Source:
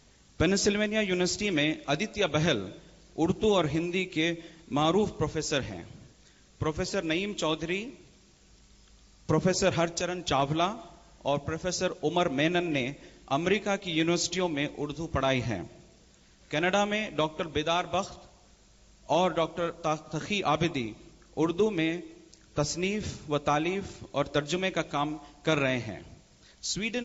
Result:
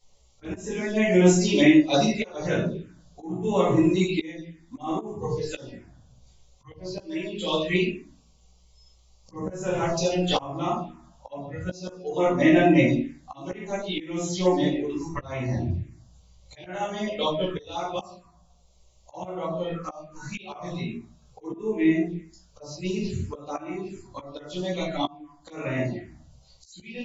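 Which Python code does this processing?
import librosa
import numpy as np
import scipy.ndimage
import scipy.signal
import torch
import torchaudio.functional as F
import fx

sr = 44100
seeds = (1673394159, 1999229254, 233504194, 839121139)

y = fx.hum_notches(x, sr, base_hz=50, count=6)
y = fx.peak_eq(y, sr, hz=100.0, db=12.5, octaves=0.79, at=(15.57, 16.66))
y = fx.echo_feedback(y, sr, ms=128, feedback_pct=44, wet_db=-18)
y = fx.room_shoebox(y, sr, seeds[0], volume_m3=110.0, walls='mixed', distance_m=2.1)
y = fx.noise_reduce_blind(y, sr, reduce_db=12)
y = fx.peak_eq(y, sr, hz=280.0, db=-15.0, octaves=0.4, at=(20.27, 21.46), fade=0.02)
y = fx.env_phaser(y, sr, low_hz=280.0, high_hz=4500.0, full_db=-14.5)
y = fx.auto_swell(y, sr, attack_ms=773.0)
y = fx.chorus_voices(y, sr, voices=6, hz=0.41, base_ms=15, depth_ms=2.2, mix_pct=30)
y = y * librosa.db_to_amplitude(4.0)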